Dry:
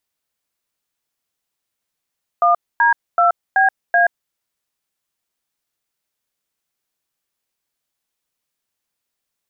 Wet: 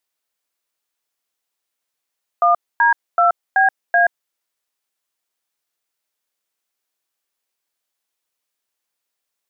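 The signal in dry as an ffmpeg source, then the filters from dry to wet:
-f lavfi -i "aevalsrc='0.224*clip(min(mod(t,0.38),0.128-mod(t,0.38))/0.002,0,1)*(eq(floor(t/0.38),0)*(sin(2*PI*697*mod(t,0.38))+sin(2*PI*1209*mod(t,0.38)))+eq(floor(t/0.38),1)*(sin(2*PI*941*mod(t,0.38))+sin(2*PI*1633*mod(t,0.38)))+eq(floor(t/0.38),2)*(sin(2*PI*697*mod(t,0.38))+sin(2*PI*1336*mod(t,0.38)))+eq(floor(t/0.38),3)*(sin(2*PI*770*mod(t,0.38))+sin(2*PI*1633*mod(t,0.38)))+eq(floor(t/0.38),4)*(sin(2*PI*697*mod(t,0.38))+sin(2*PI*1633*mod(t,0.38))))':duration=1.9:sample_rate=44100"
-af "bass=frequency=250:gain=-11,treble=frequency=4000:gain=0"

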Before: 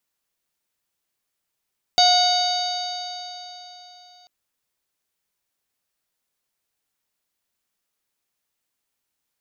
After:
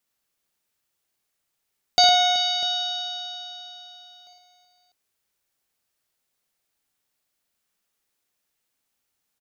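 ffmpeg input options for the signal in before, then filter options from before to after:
-f lavfi -i "aevalsrc='0.178*pow(10,-3*t/3.63)*sin(2*PI*721.37*t)+0.0316*pow(10,-3*t/3.63)*sin(2*PI*1450.9*t)+0.0299*pow(10,-3*t/3.63)*sin(2*PI*2196.63*t)+0.0398*pow(10,-3*t/3.63)*sin(2*PI*2966.26*t)+0.119*pow(10,-3*t/3.63)*sin(2*PI*3767.12*t)+0.158*pow(10,-3*t/3.63)*sin(2*PI*4606.02*t)+0.0211*pow(10,-3*t/3.63)*sin(2*PI*5489.21*t)+0.0473*pow(10,-3*t/3.63)*sin(2*PI*6422.34*t)':duration=2.29:sample_rate=44100"
-af "bandreject=frequency=1000:width=21,aecho=1:1:60|110|166|378|648:0.501|0.398|0.178|0.188|0.188"

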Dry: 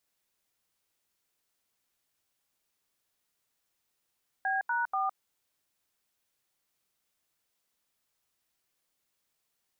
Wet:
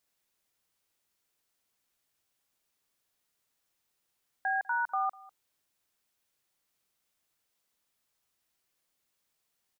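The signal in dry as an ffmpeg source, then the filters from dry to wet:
-f lavfi -i "aevalsrc='0.0335*clip(min(mod(t,0.242),0.161-mod(t,0.242))/0.002,0,1)*(eq(floor(t/0.242),0)*(sin(2*PI*770*mod(t,0.242))+sin(2*PI*1633*mod(t,0.242)))+eq(floor(t/0.242),1)*(sin(2*PI*941*mod(t,0.242))+sin(2*PI*1477*mod(t,0.242)))+eq(floor(t/0.242),2)*(sin(2*PI*770*mod(t,0.242))+sin(2*PI*1209*mod(t,0.242))))':duration=0.726:sample_rate=44100"
-filter_complex "[0:a]asplit=2[link_01][link_02];[link_02]adelay=198.3,volume=-22dB,highshelf=frequency=4000:gain=-4.46[link_03];[link_01][link_03]amix=inputs=2:normalize=0"

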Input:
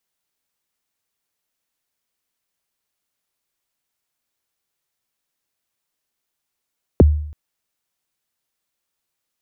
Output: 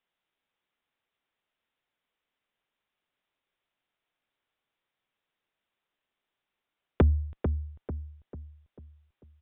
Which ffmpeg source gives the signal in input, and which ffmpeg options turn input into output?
-f lavfi -i "aevalsrc='0.631*pow(10,-3*t/0.66)*sin(2*PI*(590*0.021/log(75/590)*(exp(log(75/590)*min(t,0.021)/0.021)-1)+75*max(t-0.021,0)))':duration=0.33:sample_rate=44100"
-filter_complex "[0:a]equalizer=frequency=66:width=0.37:gain=-5,aresample=8000,asoftclip=type=tanh:threshold=-15.5dB,aresample=44100,asplit=2[link_01][link_02];[link_02]adelay=444,lowpass=frequency=1400:poles=1,volume=-7dB,asplit=2[link_03][link_04];[link_04]adelay=444,lowpass=frequency=1400:poles=1,volume=0.44,asplit=2[link_05][link_06];[link_06]adelay=444,lowpass=frequency=1400:poles=1,volume=0.44,asplit=2[link_07][link_08];[link_08]adelay=444,lowpass=frequency=1400:poles=1,volume=0.44,asplit=2[link_09][link_10];[link_10]adelay=444,lowpass=frequency=1400:poles=1,volume=0.44[link_11];[link_01][link_03][link_05][link_07][link_09][link_11]amix=inputs=6:normalize=0"

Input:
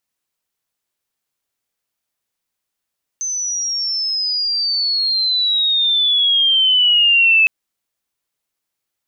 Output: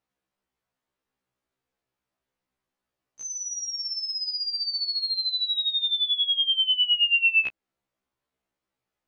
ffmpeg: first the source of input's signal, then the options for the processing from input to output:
-f lavfi -i "aevalsrc='pow(10,(-19.5+11*t/4.26)/20)*sin(2*PI*6200*4.26/log(2600/6200)*(exp(log(2600/6200)*t/4.26)-1))':duration=4.26:sample_rate=44100"
-filter_complex "[0:a]lowpass=frequency=1000:poles=1,asplit=2[link_01][link_02];[link_02]acompressor=threshold=-32dB:ratio=8,volume=1dB[link_03];[link_01][link_03]amix=inputs=2:normalize=0,afftfilt=real='re*1.73*eq(mod(b,3),0)':imag='im*1.73*eq(mod(b,3),0)':win_size=2048:overlap=0.75"

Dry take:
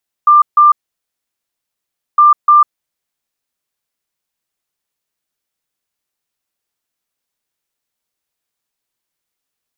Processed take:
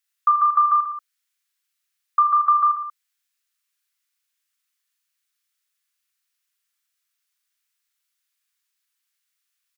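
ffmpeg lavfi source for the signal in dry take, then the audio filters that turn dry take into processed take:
-f lavfi -i "aevalsrc='0.668*sin(2*PI*1190*t)*clip(min(mod(mod(t,1.91),0.3),0.15-mod(mod(t,1.91),0.3))/0.005,0,1)*lt(mod(t,1.91),0.6)':duration=3.82:sample_rate=44100"
-af "aecho=1:1:40|86|138.9|199.7|269.7:0.631|0.398|0.251|0.158|0.1,acompressor=threshold=-10dB:ratio=2,highpass=frequency=1300:width=0.5412,highpass=frequency=1300:width=1.3066"

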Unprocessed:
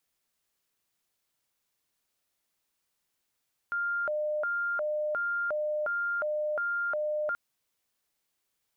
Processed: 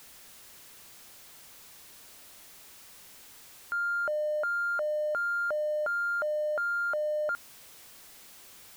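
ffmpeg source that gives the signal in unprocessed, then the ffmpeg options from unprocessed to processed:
-f lavfi -i "aevalsrc='0.0422*sin(2*PI*(1002*t+398/1.4*(0.5-abs(mod(1.4*t,1)-0.5))))':duration=3.63:sample_rate=44100"
-af "aeval=exprs='val(0)+0.5*0.00531*sgn(val(0))':channel_layout=same"

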